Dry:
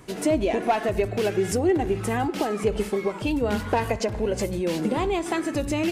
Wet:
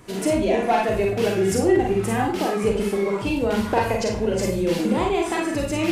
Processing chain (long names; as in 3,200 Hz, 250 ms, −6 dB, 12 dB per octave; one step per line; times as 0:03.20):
four-comb reverb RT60 0.35 s, combs from 32 ms, DRR −0.5 dB